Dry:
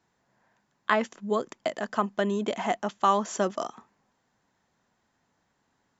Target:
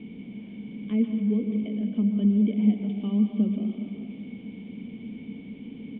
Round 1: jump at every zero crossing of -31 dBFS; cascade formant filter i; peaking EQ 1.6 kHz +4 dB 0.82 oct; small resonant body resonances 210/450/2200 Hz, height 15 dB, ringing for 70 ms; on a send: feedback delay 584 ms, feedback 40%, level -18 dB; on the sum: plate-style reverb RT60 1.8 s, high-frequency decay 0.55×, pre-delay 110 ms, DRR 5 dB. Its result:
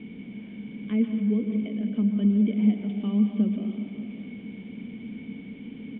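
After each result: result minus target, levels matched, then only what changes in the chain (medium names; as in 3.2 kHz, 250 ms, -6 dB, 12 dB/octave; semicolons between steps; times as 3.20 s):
echo 174 ms late; 2 kHz band +3.5 dB
change: feedback delay 410 ms, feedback 40%, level -18 dB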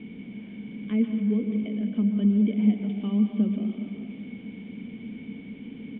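2 kHz band +3.5 dB
change: peaking EQ 1.6 kHz -4 dB 0.82 oct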